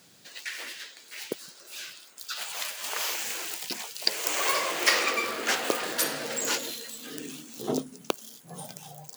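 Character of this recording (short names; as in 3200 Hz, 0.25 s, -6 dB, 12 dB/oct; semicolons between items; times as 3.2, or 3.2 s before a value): noise floor -53 dBFS; spectral tilt -1.5 dB/oct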